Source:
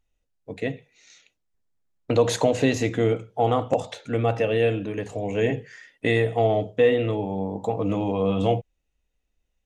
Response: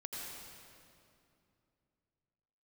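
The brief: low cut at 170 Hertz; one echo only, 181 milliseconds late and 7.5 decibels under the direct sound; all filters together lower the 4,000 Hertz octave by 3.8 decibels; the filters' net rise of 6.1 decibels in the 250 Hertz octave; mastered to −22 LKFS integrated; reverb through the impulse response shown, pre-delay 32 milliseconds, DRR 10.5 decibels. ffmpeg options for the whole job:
-filter_complex "[0:a]highpass=170,equalizer=frequency=250:width_type=o:gain=8.5,equalizer=frequency=4000:width_type=o:gain=-5,aecho=1:1:181:0.422,asplit=2[link_01][link_02];[1:a]atrim=start_sample=2205,adelay=32[link_03];[link_02][link_03]afir=irnorm=-1:irlink=0,volume=-10dB[link_04];[link_01][link_04]amix=inputs=2:normalize=0,volume=-1dB"

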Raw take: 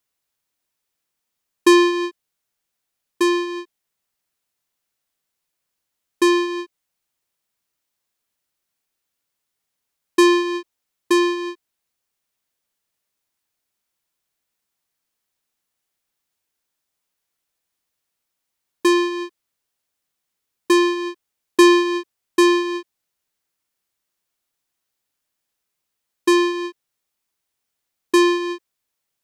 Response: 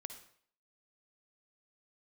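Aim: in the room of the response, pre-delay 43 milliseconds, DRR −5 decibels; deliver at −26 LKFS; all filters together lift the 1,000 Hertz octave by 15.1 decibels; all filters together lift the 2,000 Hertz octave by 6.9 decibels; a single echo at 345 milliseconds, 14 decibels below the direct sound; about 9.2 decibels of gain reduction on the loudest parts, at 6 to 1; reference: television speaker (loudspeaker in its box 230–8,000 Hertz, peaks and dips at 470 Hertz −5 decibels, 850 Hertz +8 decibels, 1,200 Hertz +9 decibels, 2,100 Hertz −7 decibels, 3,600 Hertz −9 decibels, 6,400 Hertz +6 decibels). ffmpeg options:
-filter_complex "[0:a]equalizer=frequency=1000:width_type=o:gain=7.5,equalizer=frequency=2000:width_type=o:gain=8,acompressor=threshold=-13dB:ratio=6,aecho=1:1:345:0.2,asplit=2[link_01][link_02];[1:a]atrim=start_sample=2205,adelay=43[link_03];[link_02][link_03]afir=irnorm=-1:irlink=0,volume=9dB[link_04];[link_01][link_04]amix=inputs=2:normalize=0,highpass=frequency=230:width=0.5412,highpass=frequency=230:width=1.3066,equalizer=frequency=470:width_type=q:width=4:gain=-5,equalizer=frequency=850:width_type=q:width=4:gain=8,equalizer=frequency=1200:width_type=q:width=4:gain=9,equalizer=frequency=2100:width_type=q:width=4:gain=-7,equalizer=frequency=3600:width_type=q:width=4:gain=-9,equalizer=frequency=6400:width_type=q:width=4:gain=6,lowpass=frequency=8000:width=0.5412,lowpass=frequency=8000:width=1.3066,volume=-15dB"

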